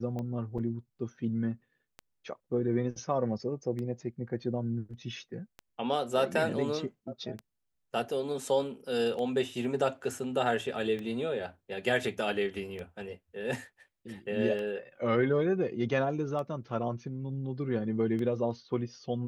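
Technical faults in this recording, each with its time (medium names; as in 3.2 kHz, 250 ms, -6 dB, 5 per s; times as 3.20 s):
tick 33 1/3 rpm -26 dBFS
0.58–0.59 s: dropout 5.5 ms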